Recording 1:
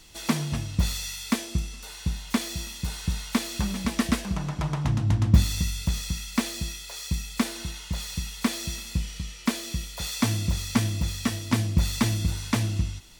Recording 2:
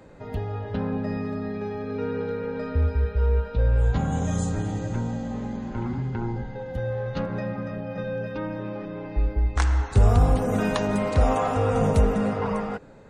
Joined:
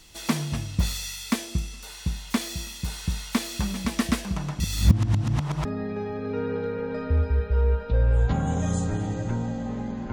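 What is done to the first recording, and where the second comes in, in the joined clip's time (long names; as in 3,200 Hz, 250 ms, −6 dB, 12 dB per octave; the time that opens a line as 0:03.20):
recording 1
0:04.60–0:05.65: reverse
0:05.65: continue with recording 2 from 0:01.30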